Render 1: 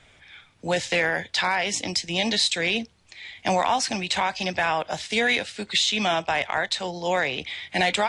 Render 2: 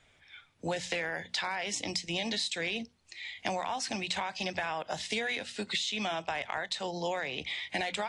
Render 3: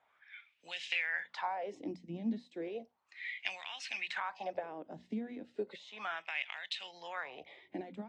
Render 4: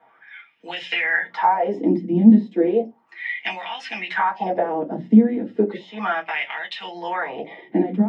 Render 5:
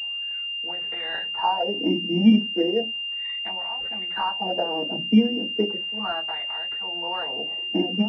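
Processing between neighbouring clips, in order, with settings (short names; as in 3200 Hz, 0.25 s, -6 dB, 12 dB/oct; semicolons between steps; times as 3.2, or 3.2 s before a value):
spectral noise reduction 8 dB; notches 60/120/180/240 Hz; compressor, threshold -29 dBFS, peak gain reduction 11 dB; gain -1.5 dB
wah 0.34 Hz 230–2900 Hz, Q 3.7; gain +4.5 dB
reverb RT60 0.15 s, pre-delay 3 ms, DRR -4 dB; gain +1 dB
crackle 48/s -37 dBFS; pulse-width modulation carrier 2800 Hz; gain -4.5 dB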